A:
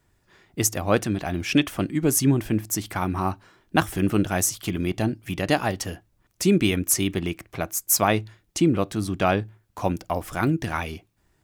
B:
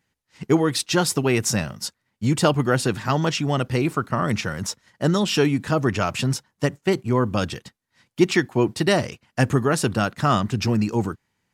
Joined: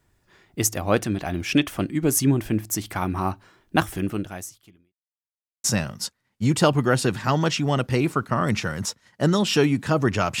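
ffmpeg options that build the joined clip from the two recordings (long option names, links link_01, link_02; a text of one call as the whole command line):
ffmpeg -i cue0.wav -i cue1.wav -filter_complex "[0:a]apad=whole_dur=10.4,atrim=end=10.4,asplit=2[link_01][link_02];[link_01]atrim=end=4.96,asetpts=PTS-STARTPTS,afade=type=out:start_time=3.82:duration=1.14:curve=qua[link_03];[link_02]atrim=start=4.96:end=5.64,asetpts=PTS-STARTPTS,volume=0[link_04];[1:a]atrim=start=1.45:end=6.21,asetpts=PTS-STARTPTS,afade=type=in:duration=0.004:curve=hsin[link_05];[link_03][link_04][link_05]concat=n=3:v=0:a=1" out.wav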